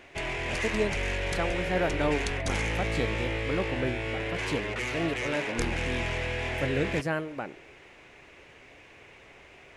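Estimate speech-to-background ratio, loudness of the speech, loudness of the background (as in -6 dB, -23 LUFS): -2.5 dB, -33.5 LUFS, -31.0 LUFS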